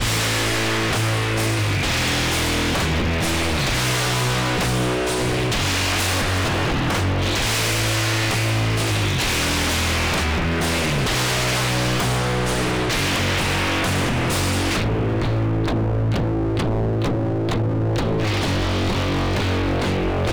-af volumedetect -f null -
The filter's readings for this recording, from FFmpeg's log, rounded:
mean_volume: -20.4 dB
max_volume: -15.7 dB